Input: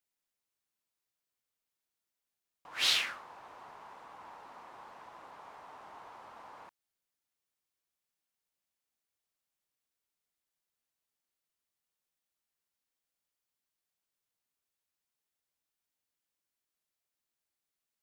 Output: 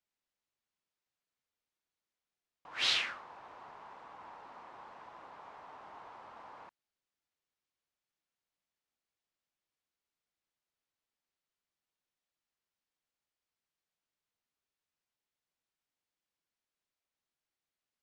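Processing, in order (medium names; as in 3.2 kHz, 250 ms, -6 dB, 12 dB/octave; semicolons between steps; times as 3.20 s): distance through air 81 m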